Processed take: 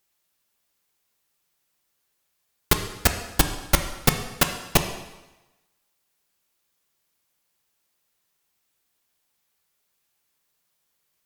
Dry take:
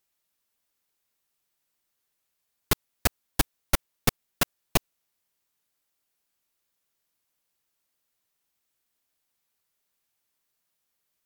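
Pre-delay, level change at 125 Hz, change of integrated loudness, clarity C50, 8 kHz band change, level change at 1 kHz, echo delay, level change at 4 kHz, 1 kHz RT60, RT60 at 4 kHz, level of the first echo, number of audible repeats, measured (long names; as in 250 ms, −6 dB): 3 ms, +6.0 dB, +5.0 dB, 8.5 dB, +5.5 dB, +5.5 dB, no echo audible, +5.5 dB, 1.1 s, 1.0 s, no echo audible, no echo audible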